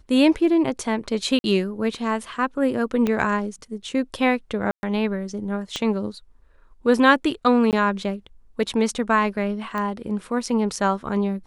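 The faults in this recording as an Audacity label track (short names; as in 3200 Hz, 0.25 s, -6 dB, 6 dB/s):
1.390000	1.440000	gap 51 ms
3.070000	3.070000	pop -11 dBFS
4.710000	4.830000	gap 0.121 s
5.760000	5.760000	pop -13 dBFS
7.710000	7.730000	gap 18 ms
9.780000	9.780000	pop -16 dBFS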